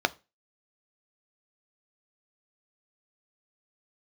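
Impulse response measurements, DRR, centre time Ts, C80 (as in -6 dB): 11.5 dB, 3 ms, 31.0 dB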